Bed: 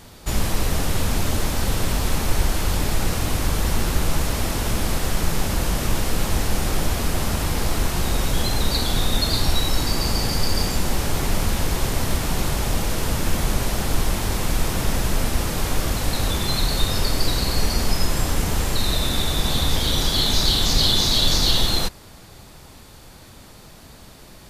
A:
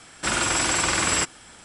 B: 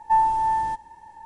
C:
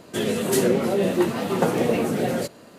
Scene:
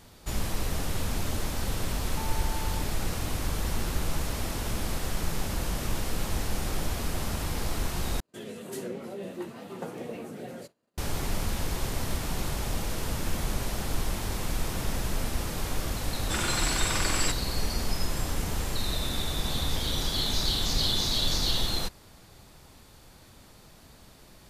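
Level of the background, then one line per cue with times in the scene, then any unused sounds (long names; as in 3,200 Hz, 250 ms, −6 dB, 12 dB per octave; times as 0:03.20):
bed −8.5 dB
0:02.07: mix in B −13.5 dB + downward compressor 3 to 1, threshold −28 dBFS
0:08.20: overwrite with C −16.5 dB + downward expander −38 dBFS
0:16.07: mix in A −7.5 dB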